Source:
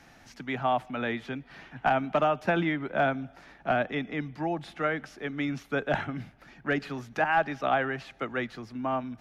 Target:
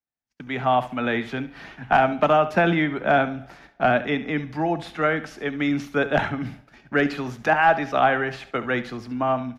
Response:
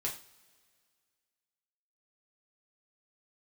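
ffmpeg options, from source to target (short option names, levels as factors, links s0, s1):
-filter_complex "[0:a]dynaudnorm=f=350:g=3:m=1.88,agate=range=0.00562:threshold=0.00562:ratio=16:detection=peak,atempo=0.96,aecho=1:1:70|140|210:0.188|0.0527|0.0148,asplit=2[s0][s1];[1:a]atrim=start_sample=2205[s2];[s1][s2]afir=irnorm=-1:irlink=0,volume=0.178[s3];[s0][s3]amix=inputs=2:normalize=0"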